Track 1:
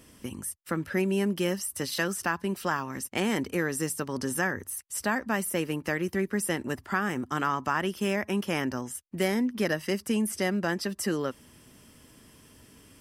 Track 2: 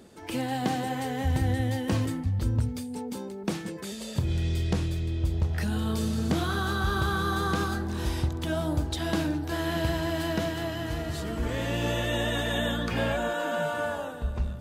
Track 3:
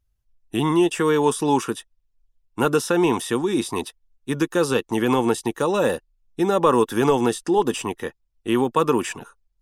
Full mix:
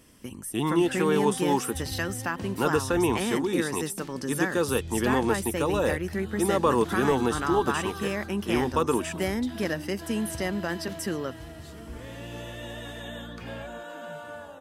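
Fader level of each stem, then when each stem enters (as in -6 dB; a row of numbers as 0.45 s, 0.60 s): -2.0 dB, -10.5 dB, -5.5 dB; 0.00 s, 0.50 s, 0.00 s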